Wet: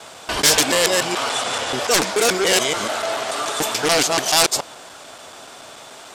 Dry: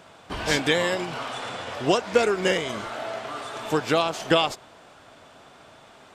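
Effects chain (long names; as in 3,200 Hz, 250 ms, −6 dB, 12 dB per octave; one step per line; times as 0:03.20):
reversed piece by piece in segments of 144 ms
sine wavefolder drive 14 dB, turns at −5 dBFS
bass and treble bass −8 dB, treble +11 dB
level −8.5 dB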